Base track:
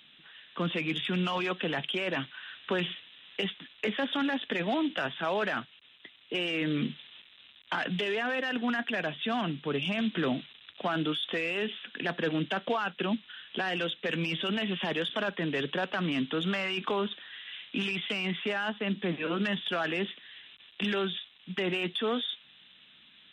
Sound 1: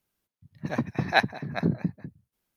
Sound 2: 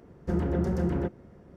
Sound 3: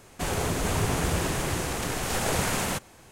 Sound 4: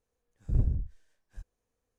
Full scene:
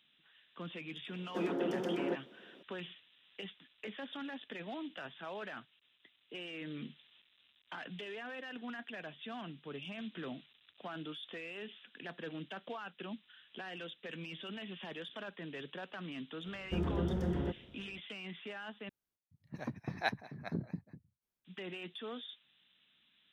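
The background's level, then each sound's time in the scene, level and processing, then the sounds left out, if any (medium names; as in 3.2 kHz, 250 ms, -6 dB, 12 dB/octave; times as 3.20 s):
base track -14 dB
1.07 s: add 2 -3.5 dB + high-pass 250 Hz 24 dB/octave
16.44 s: add 2 -7 dB + vibrato 1.4 Hz 19 cents
18.89 s: replace with 1 -13 dB
not used: 3, 4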